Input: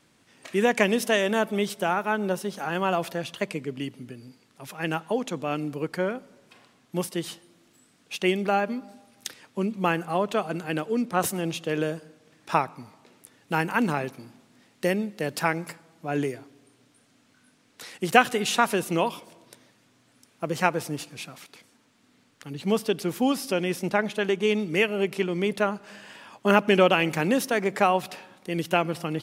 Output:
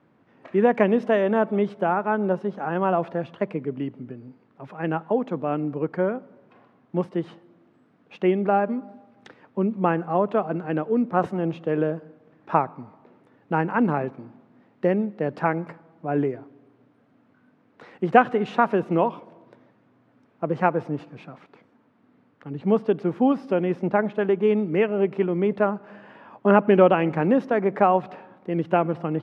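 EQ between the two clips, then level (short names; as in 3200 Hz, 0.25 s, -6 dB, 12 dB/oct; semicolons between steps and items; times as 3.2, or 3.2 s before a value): HPF 100 Hz; LPF 1200 Hz 12 dB/oct; +4.0 dB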